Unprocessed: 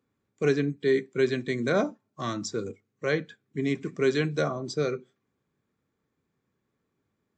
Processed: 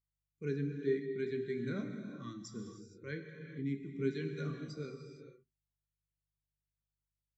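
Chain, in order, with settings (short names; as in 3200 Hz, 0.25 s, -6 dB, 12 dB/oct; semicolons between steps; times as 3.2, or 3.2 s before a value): bell 660 Hz -15 dB 1.4 oct; non-linear reverb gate 0.5 s flat, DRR 1 dB; buzz 50 Hz, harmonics 3, -67 dBFS -4 dB/oct; spectral expander 1.5:1; gain -7 dB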